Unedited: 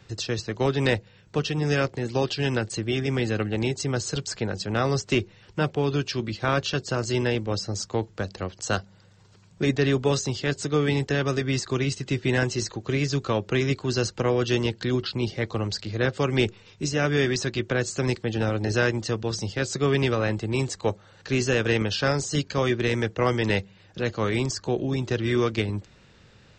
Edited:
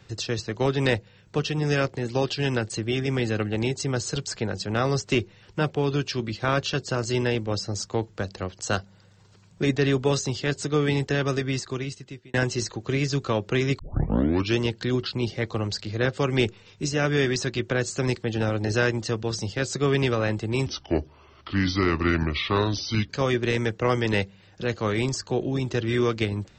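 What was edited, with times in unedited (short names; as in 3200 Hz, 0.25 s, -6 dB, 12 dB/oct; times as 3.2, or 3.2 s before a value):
11.34–12.34 fade out
13.79 tape start 0.78 s
20.66–22.46 speed 74%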